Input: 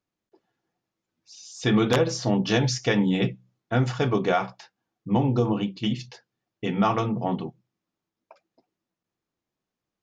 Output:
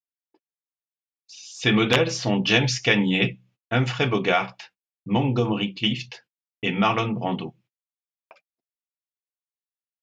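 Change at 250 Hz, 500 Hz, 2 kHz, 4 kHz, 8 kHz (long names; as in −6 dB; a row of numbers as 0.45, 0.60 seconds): 0.0, +0.5, +8.0, +7.5, +1.5 decibels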